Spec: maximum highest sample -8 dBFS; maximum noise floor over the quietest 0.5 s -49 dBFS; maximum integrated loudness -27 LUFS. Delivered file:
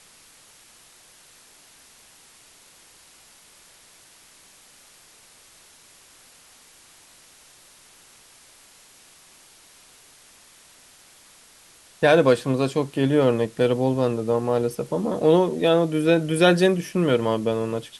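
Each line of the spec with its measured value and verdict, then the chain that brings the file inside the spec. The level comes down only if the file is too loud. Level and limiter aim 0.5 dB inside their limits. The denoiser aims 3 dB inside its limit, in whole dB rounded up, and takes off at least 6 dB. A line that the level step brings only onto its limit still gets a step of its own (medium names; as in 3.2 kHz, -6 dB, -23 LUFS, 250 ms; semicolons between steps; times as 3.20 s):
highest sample -5.5 dBFS: fail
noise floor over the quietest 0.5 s -52 dBFS: pass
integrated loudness -21.0 LUFS: fail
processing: trim -6.5 dB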